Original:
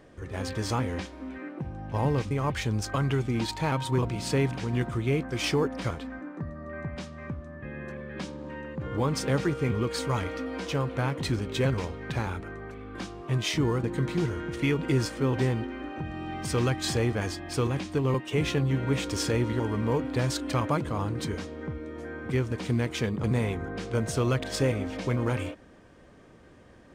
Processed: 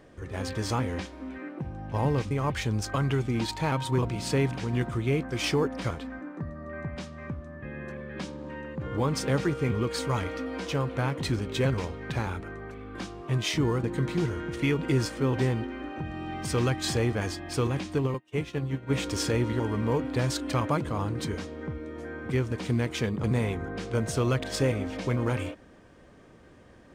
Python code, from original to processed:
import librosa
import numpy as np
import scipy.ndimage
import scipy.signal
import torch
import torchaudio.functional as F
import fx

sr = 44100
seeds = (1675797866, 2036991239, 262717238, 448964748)

y = fx.upward_expand(x, sr, threshold_db=-39.0, expansion=2.5, at=(18.06, 18.89), fade=0.02)